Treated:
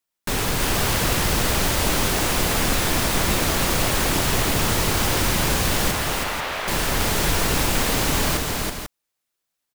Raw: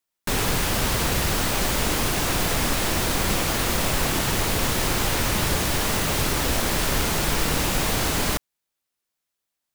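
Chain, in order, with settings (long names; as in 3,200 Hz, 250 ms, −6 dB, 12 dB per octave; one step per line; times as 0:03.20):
0:05.91–0:06.68: three-way crossover with the lows and the highs turned down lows −18 dB, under 510 Hz, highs −16 dB, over 3,600 Hz
on a send: multi-tap delay 324/491 ms −3/−8 dB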